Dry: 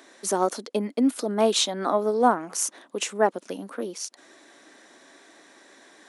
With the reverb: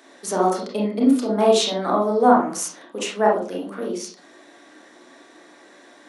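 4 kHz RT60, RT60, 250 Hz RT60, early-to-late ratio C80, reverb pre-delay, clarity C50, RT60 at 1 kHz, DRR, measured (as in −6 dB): 0.25 s, 0.40 s, 0.55 s, 10.5 dB, 28 ms, 4.0 dB, 0.35 s, −3.5 dB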